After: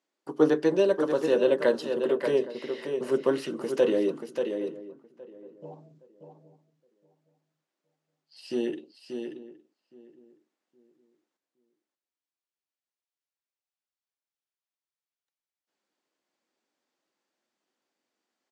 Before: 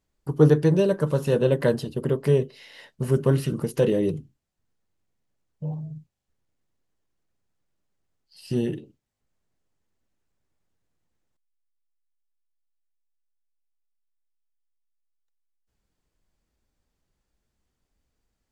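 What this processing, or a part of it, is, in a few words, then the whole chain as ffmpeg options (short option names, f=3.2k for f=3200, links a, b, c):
ducked delay: -filter_complex "[0:a]highpass=f=280:w=0.5412,highpass=f=280:w=1.3066,lowpass=6.6k,bandreject=f=440:w=12,asplit=3[a][b][c];[b]adelay=584,volume=-6.5dB[d];[c]apad=whole_len=842304[e];[d][e]sidechaincompress=threshold=-27dB:ratio=8:attack=16:release=164[f];[a][f]amix=inputs=2:normalize=0,asplit=2[g][h];[h]adelay=817,lowpass=f=1.1k:p=1,volume=-17dB,asplit=2[i][j];[j]adelay=817,lowpass=f=1.1k:p=1,volume=0.28,asplit=2[k][l];[l]adelay=817,lowpass=f=1.1k:p=1,volume=0.28[m];[g][i][k][m]amix=inputs=4:normalize=0"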